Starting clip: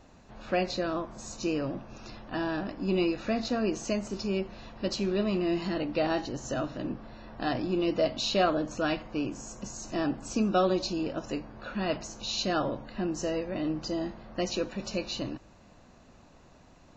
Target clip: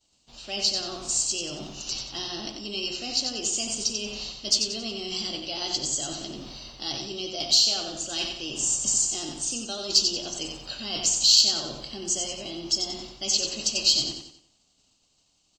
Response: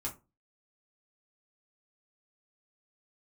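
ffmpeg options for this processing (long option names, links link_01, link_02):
-af "lowpass=frequency=3700:poles=1,bandreject=frequency=82.75:width_type=h:width=4,bandreject=frequency=165.5:width_type=h:width=4,bandreject=frequency=248.25:width_type=h:width=4,bandreject=frequency=331:width_type=h:width=4,bandreject=frequency=413.75:width_type=h:width=4,bandreject=frequency=496.5:width_type=h:width=4,bandreject=frequency=579.25:width_type=h:width=4,bandreject=frequency=662:width_type=h:width=4,bandreject=frequency=744.75:width_type=h:width=4,bandreject=frequency=827.5:width_type=h:width=4,bandreject=frequency=910.25:width_type=h:width=4,bandreject=frequency=993:width_type=h:width=4,bandreject=frequency=1075.75:width_type=h:width=4,bandreject=frequency=1158.5:width_type=h:width=4,bandreject=frequency=1241.25:width_type=h:width=4,bandreject=frequency=1324:width_type=h:width=4,bandreject=frequency=1406.75:width_type=h:width=4,bandreject=frequency=1489.5:width_type=h:width=4,bandreject=frequency=1572.25:width_type=h:width=4,bandreject=frequency=1655:width_type=h:width=4,bandreject=frequency=1737.75:width_type=h:width=4,bandreject=frequency=1820.5:width_type=h:width=4,bandreject=frequency=1903.25:width_type=h:width=4,bandreject=frequency=1986:width_type=h:width=4,bandreject=frequency=2068.75:width_type=h:width=4,bandreject=frequency=2151.5:width_type=h:width=4,bandreject=frequency=2234.25:width_type=h:width=4,bandreject=frequency=2317:width_type=h:width=4,bandreject=frequency=2399.75:width_type=h:width=4,bandreject=frequency=2482.5:width_type=h:width=4,bandreject=frequency=2565.25:width_type=h:width=4,bandreject=frequency=2648:width_type=h:width=4,bandreject=frequency=2730.75:width_type=h:width=4,bandreject=frequency=2813.5:width_type=h:width=4,bandreject=frequency=2896.25:width_type=h:width=4,agate=range=-33dB:threshold=-43dB:ratio=3:detection=peak,areverse,acompressor=threshold=-36dB:ratio=6,areverse,aecho=1:1:99|198|297|396|495:0.501|0.19|0.0724|0.0275|0.0105,aexciter=amount=8.4:drive=9.2:freq=2600,asetrate=48000,aresample=44100"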